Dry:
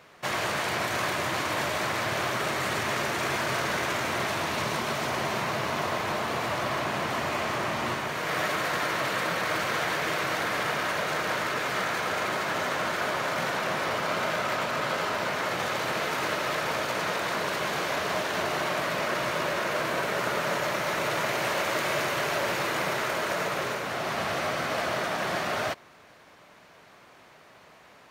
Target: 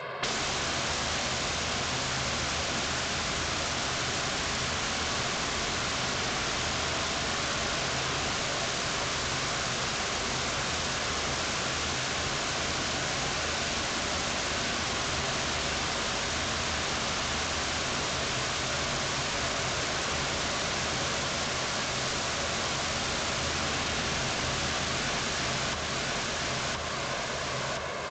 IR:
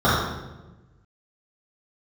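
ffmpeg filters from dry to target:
-filter_complex "[0:a]equalizer=frequency=740:width=0.9:gain=4.5,aecho=1:1:1.9:0.79,aresample=11025,aeval=exprs='0.316*sin(PI/2*2.51*val(0)/0.316)':channel_layout=same,aresample=44100,highpass=110,aeval=exprs='(mod(5.62*val(0)+1,2)-1)/5.62':channel_layout=same,lowshelf=frequency=200:gain=-5,aecho=1:1:1019|2038|3057|4076|5095:0.501|0.205|0.0842|0.0345|0.0142,acompressor=threshold=-29dB:ratio=6,asplit=2[link_01][link_02];[1:a]atrim=start_sample=2205,lowpass=2600,lowshelf=frequency=210:gain=8.5[link_03];[link_02][link_03]afir=irnorm=-1:irlink=0,volume=-28dB[link_04];[link_01][link_04]amix=inputs=2:normalize=0" -ar 16000 -c:a g722

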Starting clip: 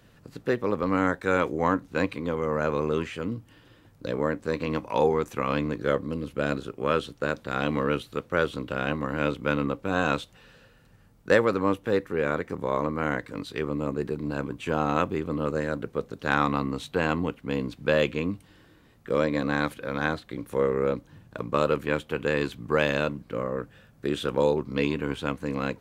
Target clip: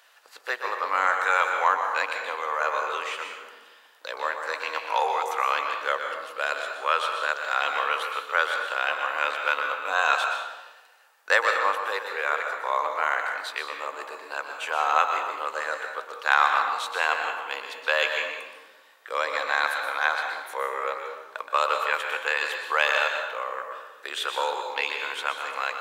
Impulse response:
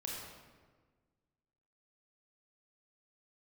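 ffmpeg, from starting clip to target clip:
-filter_complex "[0:a]highpass=frequency=750:width=0.5412,highpass=frequency=750:width=1.3066,asplit=2[link_01][link_02];[1:a]atrim=start_sample=2205,asetrate=61740,aresample=44100,adelay=123[link_03];[link_02][link_03]afir=irnorm=-1:irlink=0,volume=-1dB[link_04];[link_01][link_04]amix=inputs=2:normalize=0,volume=5.5dB"

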